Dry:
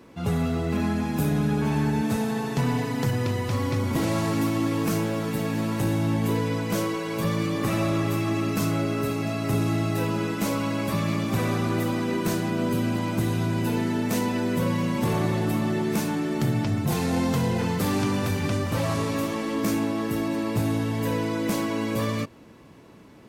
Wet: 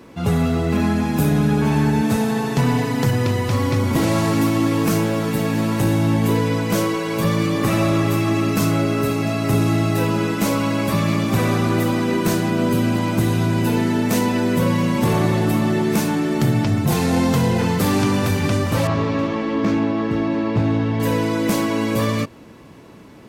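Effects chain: 18.87–21 air absorption 200 m; gain +6.5 dB

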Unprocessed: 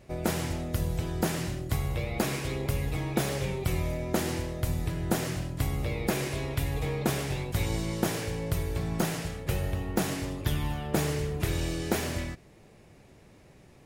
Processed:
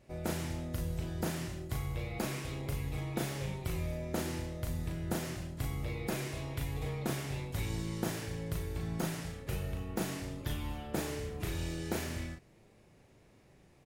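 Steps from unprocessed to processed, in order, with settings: doubler 37 ms -4 dB; gain -8.5 dB

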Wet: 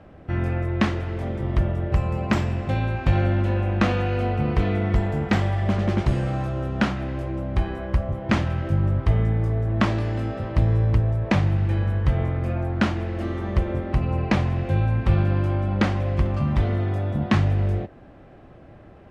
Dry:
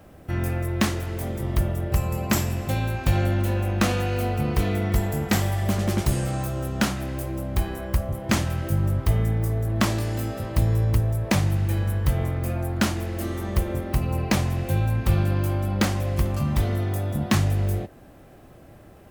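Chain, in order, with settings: LPF 2900 Hz 12 dB/oct; gain +1.5 dB

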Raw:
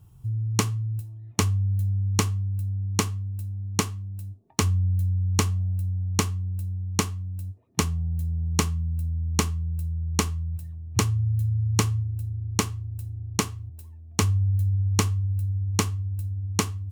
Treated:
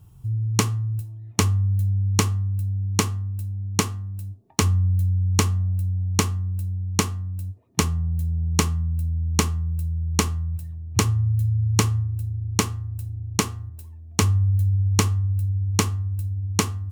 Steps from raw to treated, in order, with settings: de-hum 119.2 Hz, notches 16; gain +3 dB

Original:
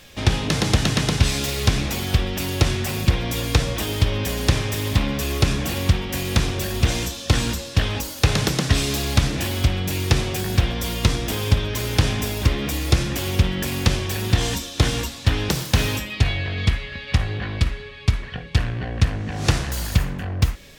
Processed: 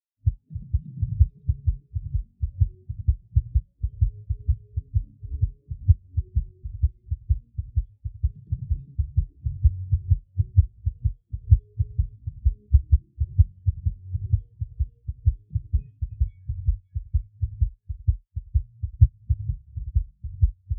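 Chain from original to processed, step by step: echo with dull and thin repeats by turns 0.282 s, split 1400 Hz, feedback 69%, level -2.5 dB; spectral expander 4:1

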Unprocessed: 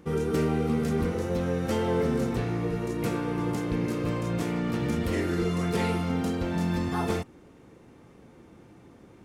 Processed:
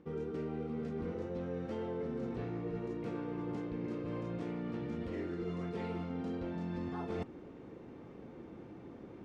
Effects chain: LPF 4100 Hz 12 dB/oct; bell 360 Hz +6.5 dB 2.4 oct; reverse; compressor 10:1, threshold -33 dBFS, peak gain reduction 17 dB; reverse; gain -3 dB

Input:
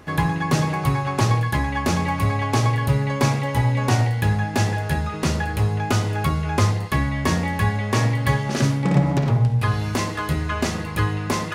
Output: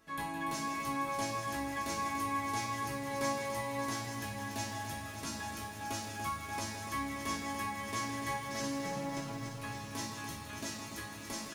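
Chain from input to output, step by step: high shelf 3000 Hz +10 dB; resonator bank A3 major, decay 0.4 s; echo 0.164 s -9 dB; lo-fi delay 0.29 s, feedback 80%, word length 10-bit, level -7.5 dB

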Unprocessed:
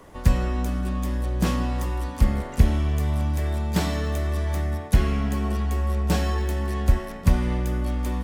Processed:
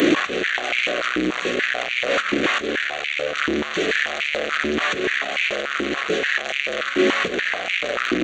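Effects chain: delta modulation 32 kbps, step -17.5 dBFS; in parallel at +1 dB: negative-ratio compressor -22 dBFS; on the sum: high shelf 4600 Hz +7.5 dB; fixed phaser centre 2200 Hz, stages 4; limiter -11 dBFS, peak gain reduction 7.5 dB; on a send: reverse echo 0.18 s -13 dB; on the sum: stepped high-pass 6.9 Hz 310–2300 Hz

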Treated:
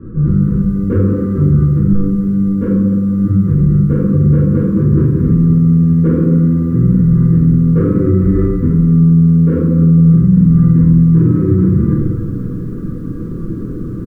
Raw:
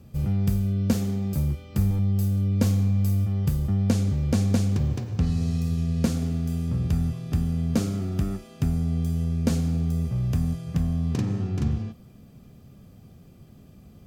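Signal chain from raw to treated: low shelf 370 Hz +2.5 dB; formant shift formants +6 st; LPF 1400 Hz 24 dB/oct; reverse; compressor 5:1, threshold -32 dBFS, peak gain reduction 16.5 dB; reverse; Butterworth band-stop 750 Hz, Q 0.95; comb 6.1 ms, depth 47%; on a send: flutter echo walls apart 8.4 m, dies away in 0.31 s; on the sum: shoebox room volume 200 m³, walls mixed, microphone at 3.2 m; maximiser +15.5 dB; lo-fi delay 0.268 s, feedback 55%, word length 7-bit, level -14 dB; gain -2.5 dB

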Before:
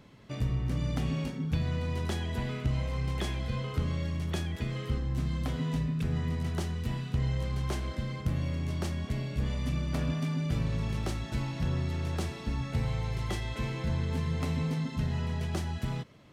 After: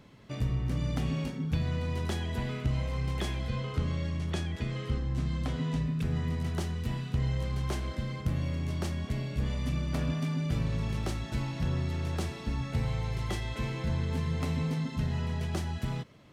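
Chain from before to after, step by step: 3.49–5.86 LPF 9200 Hz 12 dB/oct

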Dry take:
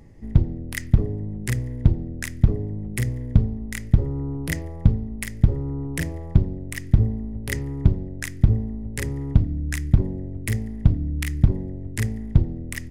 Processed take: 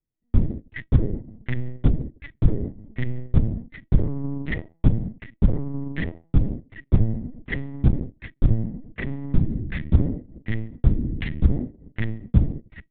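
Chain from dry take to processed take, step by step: shoebox room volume 4000 m³, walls furnished, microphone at 0.57 m; gate -26 dBFS, range -40 dB; LPC vocoder at 8 kHz pitch kept

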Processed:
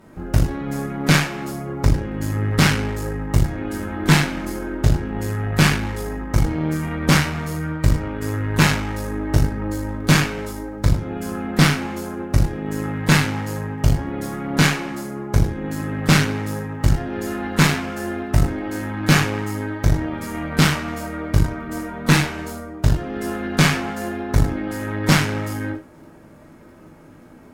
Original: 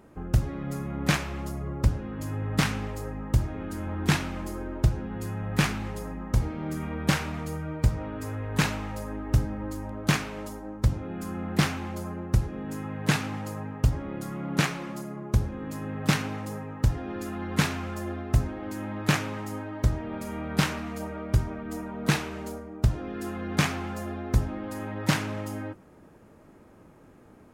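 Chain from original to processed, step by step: crackle 23/s -52 dBFS; non-linear reverb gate 0.13 s falling, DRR -4 dB; added harmonics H 6 -18 dB, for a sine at -4.5 dBFS; gain +3 dB

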